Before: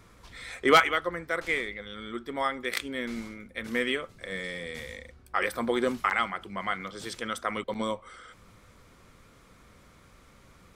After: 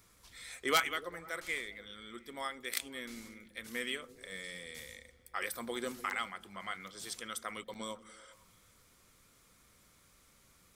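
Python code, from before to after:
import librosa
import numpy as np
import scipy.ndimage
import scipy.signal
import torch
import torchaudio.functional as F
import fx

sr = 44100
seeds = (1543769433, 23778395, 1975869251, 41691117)

y = scipy.signal.lfilter([1.0, -0.8], [1.0], x)
y = fx.echo_stepped(y, sr, ms=100, hz=150.0, octaves=0.7, feedback_pct=70, wet_db=-10)
y = F.gain(torch.from_numpy(y), 1.0).numpy()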